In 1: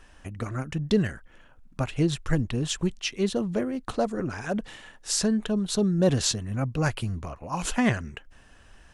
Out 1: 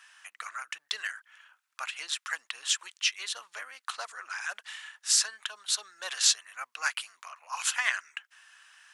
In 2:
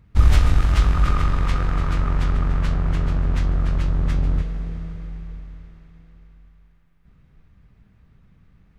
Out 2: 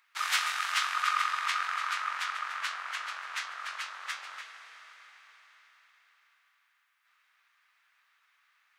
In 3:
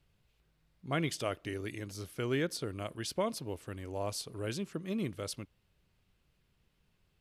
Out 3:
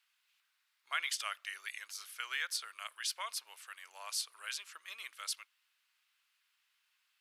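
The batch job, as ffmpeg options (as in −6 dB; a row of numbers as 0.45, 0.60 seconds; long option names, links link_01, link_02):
-af "highpass=frequency=1200:width=0.5412,highpass=frequency=1200:width=1.3066,volume=3.5dB"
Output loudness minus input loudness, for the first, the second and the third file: −3.0, −9.5, −2.5 LU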